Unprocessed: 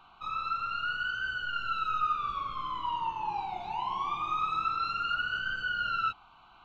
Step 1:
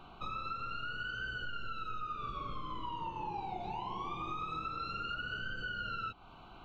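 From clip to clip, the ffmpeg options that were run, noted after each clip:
ffmpeg -i in.wav -af "lowshelf=frequency=690:width_type=q:width=1.5:gain=9.5,acompressor=threshold=-39dB:ratio=6,volume=2dB" out.wav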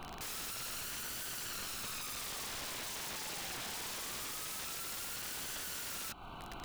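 ffmpeg -i in.wav -af "acrusher=bits=6:mode=log:mix=0:aa=0.000001,aeval=exprs='(mod(168*val(0)+1,2)-1)/168':channel_layout=same,volume=7dB" out.wav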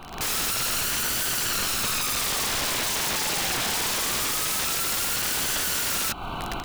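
ffmpeg -i in.wav -af "dynaudnorm=framelen=110:gausssize=3:maxgain=11.5dB,volume=4.5dB" out.wav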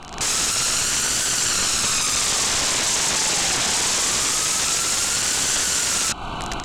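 ffmpeg -i in.wav -af "lowpass=frequency=7400:width_type=q:width=2.5,volume=3dB" out.wav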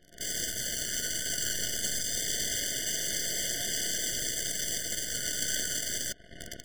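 ffmpeg -i in.wav -af "aeval=exprs='0.316*(cos(1*acos(clip(val(0)/0.316,-1,1)))-cos(1*PI/2))+0.1*(cos(3*acos(clip(val(0)/0.316,-1,1)))-cos(3*PI/2))+0.00794*(cos(8*acos(clip(val(0)/0.316,-1,1)))-cos(8*PI/2))':channel_layout=same,afftfilt=real='re*eq(mod(floor(b*sr/1024/720),2),0)':imag='im*eq(mod(floor(b*sr/1024/720),2),0)':win_size=1024:overlap=0.75" out.wav

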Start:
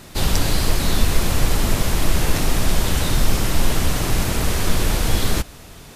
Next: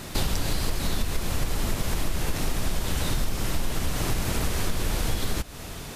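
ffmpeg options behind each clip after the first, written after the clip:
ffmpeg -i in.wav -af "acompressor=threshold=-26dB:ratio=5,volume=3.5dB" out.wav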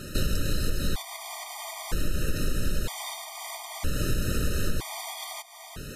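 ffmpeg -i in.wav -af "afftfilt=real='re*gt(sin(2*PI*0.52*pts/sr)*(1-2*mod(floor(b*sr/1024/620),2)),0)':imag='im*gt(sin(2*PI*0.52*pts/sr)*(1-2*mod(floor(b*sr/1024/620),2)),0)':win_size=1024:overlap=0.75" out.wav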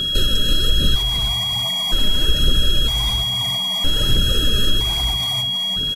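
ffmpeg -i in.wav -filter_complex "[0:a]aphaser=in_gain=1:out_gain=1:delay=5:decay=0.48:speed=1.2:type=triangular,asplit=2[link_01][link_02];[link_02]asplit=4[link_03][link_04][link_05][link_06];[link_03]adelay=334,afreqshift=-66,volume=-9dB[link_07];[link_04]adelay=668,afreqshift=-132,volume=-17.2dB[link_08];[link_05]adelay=1002,afreqshift=-198,volume=-25.4dB[link_09];[link_06]adelay=1336,afreqshift=-264,volume=-33.5dB[link_10];[link_07][link_08][link_09][link_10]amix=inputs=4:normalize=0[link_11];[link_01][link_11]amix=inputs=2:normalize=0,aeval=exprs='val(0)+0.0708*sin(2*PI*3300*n/s)':channel_layout=same,volume=4dB" out.wav

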